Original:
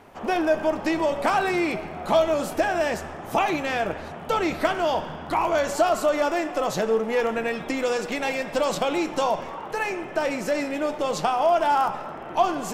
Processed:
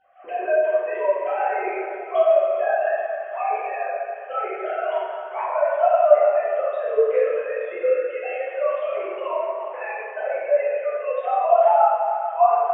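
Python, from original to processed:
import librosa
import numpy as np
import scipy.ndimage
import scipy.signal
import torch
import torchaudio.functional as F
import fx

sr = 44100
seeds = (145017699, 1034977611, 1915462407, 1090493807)

p1 = fx.sine_speech(x, sr)
p2 = fx.low_shelf(p1, sr, hz=320.0, db=4.0)
p3 = p2 + fx.echo_feedback(p2, sr, ms=413, feedback_pct=39, wet_db=-13.5, dry=0)
p4 = fx.rev_plate(p3, sr, seeds[0], rt60_s=1.8, hf_ratio=0.6, predelay_ms=0, drr_db=-9.5)
y = p4 * librosa.db_to_amplitude(-8.5)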